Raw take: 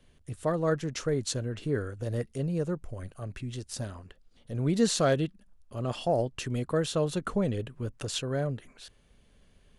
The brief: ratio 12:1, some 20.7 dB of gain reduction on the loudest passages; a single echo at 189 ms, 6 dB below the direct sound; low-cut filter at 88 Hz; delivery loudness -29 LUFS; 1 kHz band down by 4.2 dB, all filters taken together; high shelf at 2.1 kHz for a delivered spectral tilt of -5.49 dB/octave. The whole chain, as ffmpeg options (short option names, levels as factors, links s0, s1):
-af "highpass=88,equalizer=f=1000:t=o:g=-5.5,highshelf=f=2100:g=-4.5,acompressor=threshold=0.00891:ratio=12,aecho=1:1:189:0.501,volume=6.68"